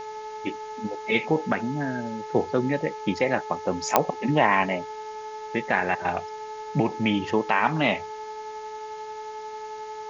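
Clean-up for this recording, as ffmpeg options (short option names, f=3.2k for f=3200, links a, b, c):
-af "adeclick=t=4,bandreject=f=429.4:t=h:w=4,bandreject=f=858.8:t=h:w=4,bandreject=f=1.2882k:t=h:w=4,bandreject=f=1.7176k:t=h:w=4,bandreject=f=2.147k:t=h:w=4,bandreject=f=870:w=30,afwtdn=0.004"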